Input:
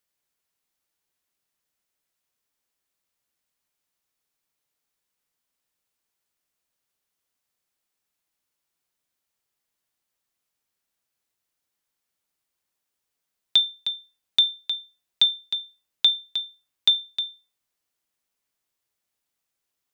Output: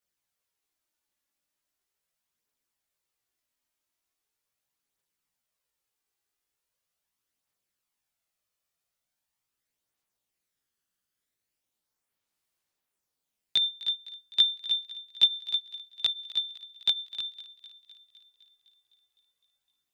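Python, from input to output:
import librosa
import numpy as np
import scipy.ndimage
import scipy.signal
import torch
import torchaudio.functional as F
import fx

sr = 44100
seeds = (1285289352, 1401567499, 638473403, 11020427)

y = fx.chorus_voices(x, sr, voices=2, hz=0.2, base_ms=18, depth_ms=1.8, mix_pct=60)
y = fx.echo_thinned(y, sr, ms=255, feedback_pct=68, hz=720.0, wet_db=-17.5)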